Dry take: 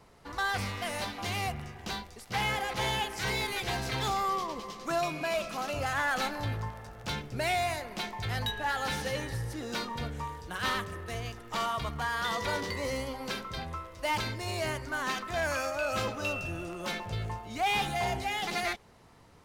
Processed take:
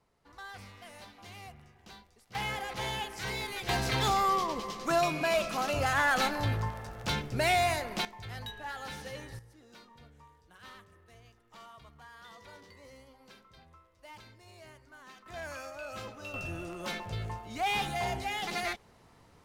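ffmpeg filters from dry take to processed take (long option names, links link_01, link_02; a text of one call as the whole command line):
ffmpeg -i in.wav -af "asetnsamples=nb_out_samples=441:pad=0,asendcmd='2.35 volume volume -4.5dB;3.69 volume volume 3dB;8.05 volume volume -9dB;9.39 volume volume -20dB;15.26 volume volume -10.5dB;16.34 volume volume -2dB',volume=-15dB" out.wav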